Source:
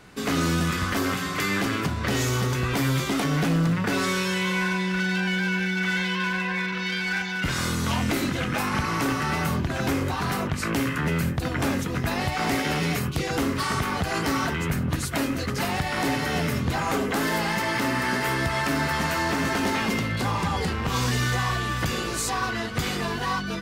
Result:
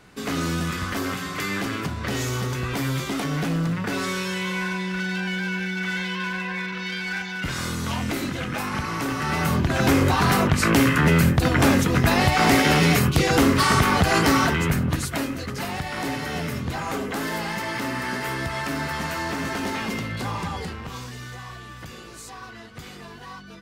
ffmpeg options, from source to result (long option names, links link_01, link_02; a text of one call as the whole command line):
ffmpeg -i in.wav -af "volume=7.5dB,afade=type=in:start_time=9.1:duration=0.97:silence=0.334965,afade=type=out:start_time=14.13:duration=1.22:silence=0.298538,afade=type=out:start_time=20.39:duration=0.7:silence=0.316228" out.wav